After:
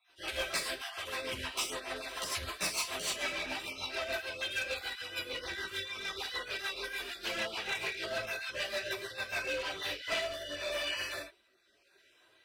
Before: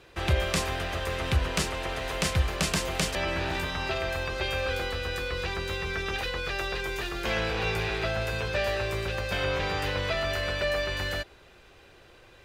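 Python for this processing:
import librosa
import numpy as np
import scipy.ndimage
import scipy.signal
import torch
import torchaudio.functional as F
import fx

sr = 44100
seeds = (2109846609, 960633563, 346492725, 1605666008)

y = fx.spec_dropout(x, sr, seeds[0], share_pct=33)
y = fx.highpass(y, sr, hz=560.0, slope=6)
y = fx.high_shelf(y, sr, hz=2700.0, db=6.0)
y = fx.notch(y, sr, hz=6700.0, q=7.9)
y = y + 0.45 * np.pad(y, (int(3.1 * sr / 1000.0), 0))[:len(y)]
y = fx.room_early_taps(y, sr, ms=(42, 65), db=(-4.5, -3.5))
y = fx.chorus_voices(y, sr, voices=4, hz=0.7, base_ms=14, depth_ms=4.7, mix_pct=60)
y = np.clip(10.0 ** (27.5 / 20.0) * y, -1.0, 1.0) / 10.0 ** (27.5 / 20.0)
y = fx.rotary_switch(y, sr, hz=6.7, then_hz=0.85, switch_at_s=9.49)
y = fx.upward_expand(y, sr, threshold_db=-47.0, expansion=1.5)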